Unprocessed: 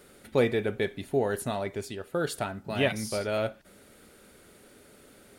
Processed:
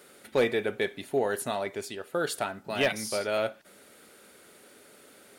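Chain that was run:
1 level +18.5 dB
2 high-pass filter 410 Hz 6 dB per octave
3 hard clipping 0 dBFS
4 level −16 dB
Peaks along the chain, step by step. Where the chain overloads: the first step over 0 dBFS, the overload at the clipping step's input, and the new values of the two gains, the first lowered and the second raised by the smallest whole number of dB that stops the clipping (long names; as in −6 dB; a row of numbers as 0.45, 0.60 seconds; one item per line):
+7.0, +6.5, 0.0, −16.0 dBFS
step 1, 6.5 dB
step 1 +11.5 dB, step 4 −9 dB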